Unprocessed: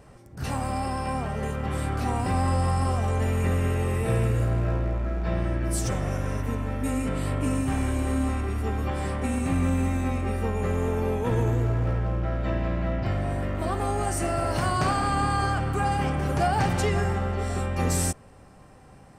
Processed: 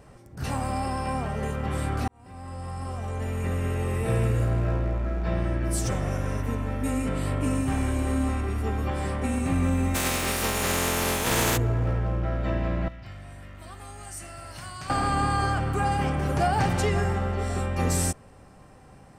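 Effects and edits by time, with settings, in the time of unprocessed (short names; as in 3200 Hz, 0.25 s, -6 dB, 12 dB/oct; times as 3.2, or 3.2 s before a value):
2.08–4.26 fade in
9.94–11.56 spectral contrast lowered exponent 0.37
12.88–14.9 passive tone stack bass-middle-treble 5-5-5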